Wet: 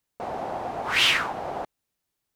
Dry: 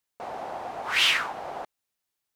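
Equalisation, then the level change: low shelf 450 Hz +9.5 dB; +1.0 dB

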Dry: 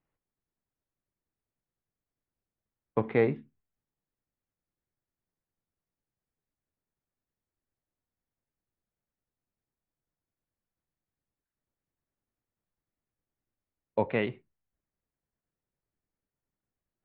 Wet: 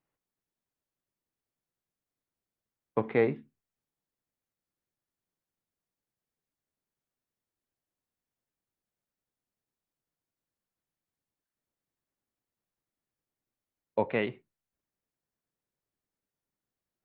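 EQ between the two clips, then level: low shelf 91 Hz -10.5 dB; 0.0 dB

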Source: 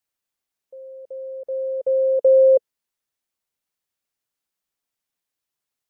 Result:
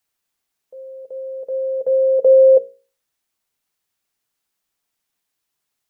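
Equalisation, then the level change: notches 60/120/180/240/300/360/420/480/540 Hz; notch 550 Hz, Q 12; +7.0 dB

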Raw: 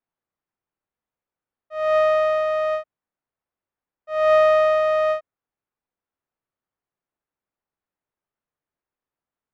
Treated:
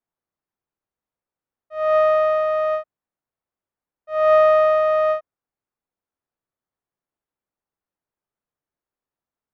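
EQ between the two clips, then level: dynamic EQ 1000 Hz, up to +5 dB, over -32 dBFS, Q 1.3; high shelf 2300 Hz -6.5 dB; 0.0 dB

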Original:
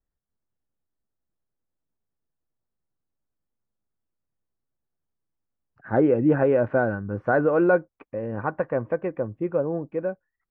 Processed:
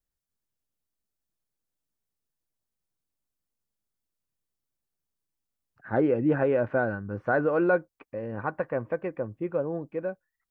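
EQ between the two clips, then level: high shelf 2600 Hz +10 dB; -4.5 dB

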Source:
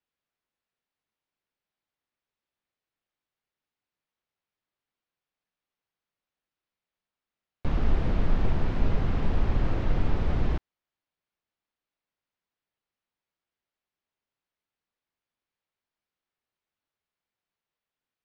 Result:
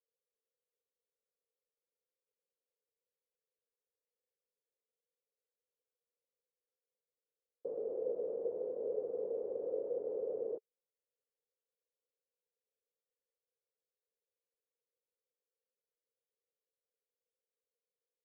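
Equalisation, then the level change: Butterworth band-pass 480 Hz, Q 4.6; air absorption 450 m; +8.0 dB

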